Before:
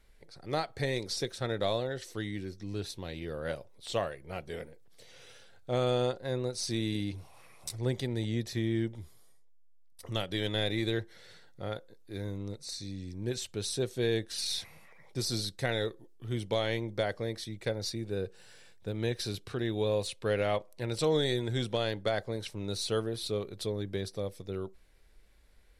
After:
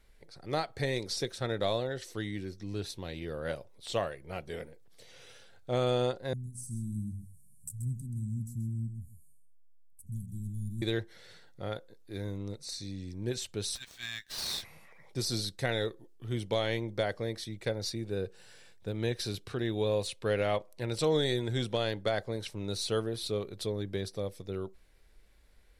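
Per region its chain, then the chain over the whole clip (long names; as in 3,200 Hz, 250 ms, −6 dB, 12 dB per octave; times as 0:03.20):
0:06.33–0:10.82: Chebyshev band-stop filter 210–7,800 Hz, order 4 + single-tap delay 131 ms −10 dB
0:13.75–0:14.63: linear-phase brick-wall high-pass 1,500 Hz + windowed peak hold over 3 samples
whole clip: no processing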